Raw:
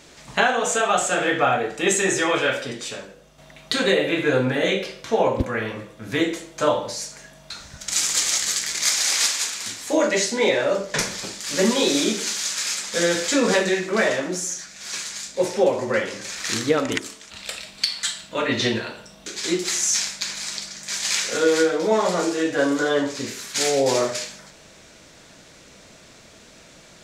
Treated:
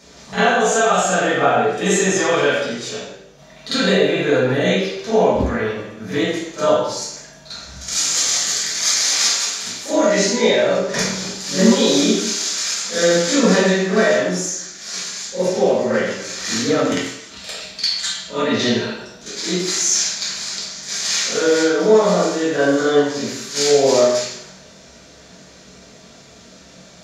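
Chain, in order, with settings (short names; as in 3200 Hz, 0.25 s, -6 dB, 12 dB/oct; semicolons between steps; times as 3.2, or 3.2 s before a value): reverse echo 49 ms -10.5 dB; reverb RT60 0.70 s, pre-delay 3 ms, DRR -4.5 dB; gain -7 dB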